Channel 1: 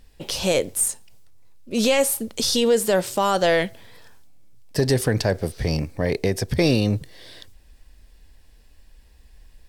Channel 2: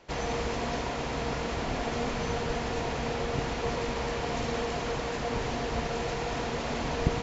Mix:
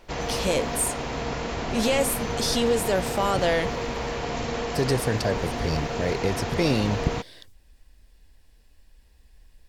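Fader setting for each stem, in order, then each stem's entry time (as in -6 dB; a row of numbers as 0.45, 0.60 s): -4.5, +2.0 dB; 0.00, 0.00 s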